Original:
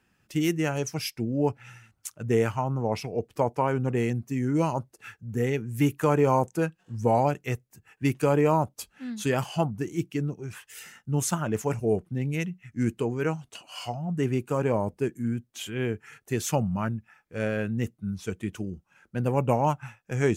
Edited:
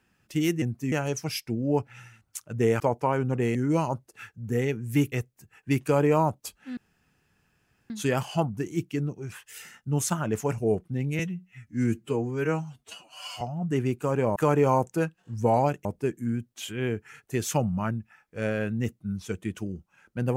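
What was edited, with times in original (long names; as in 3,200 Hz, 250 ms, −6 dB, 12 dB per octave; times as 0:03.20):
0:02.50–0:03.35: remove
0:04.10–0:04.40: move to 0:00.62
0:05.97–0:07.46: move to 0:14.83
0:09.11: splice in room tone 1.13 s
0:12.40–0:13.88: time-stretch 1.5×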